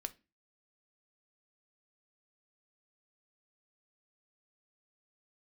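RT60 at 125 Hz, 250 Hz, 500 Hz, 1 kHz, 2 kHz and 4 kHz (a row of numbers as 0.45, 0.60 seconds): 0.40, 0.40, 0.30, 0.25, 0.30, 0.25 seconds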